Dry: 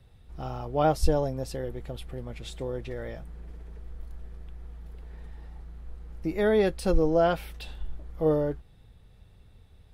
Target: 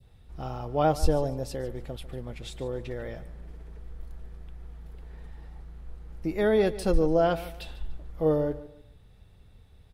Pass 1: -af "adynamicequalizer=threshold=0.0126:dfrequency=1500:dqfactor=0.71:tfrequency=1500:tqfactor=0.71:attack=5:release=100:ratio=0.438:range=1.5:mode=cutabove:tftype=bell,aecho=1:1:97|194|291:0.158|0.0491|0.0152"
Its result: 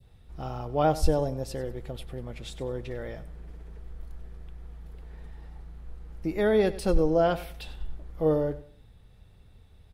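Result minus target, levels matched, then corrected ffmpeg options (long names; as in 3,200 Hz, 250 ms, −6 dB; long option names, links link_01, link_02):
echo 49 ms early
-af "adynamicequalizer=threshold=0.0126:dfrequency=1500:dqfactor=0.71:tfrequency=1500:tqfactor=0.71:attack=5:release=100:ratio=0.438:range=1.5:mode=cutabove:tftype=bell,aecho=1:1:146|292|438:0.158|0.0491|0.0152"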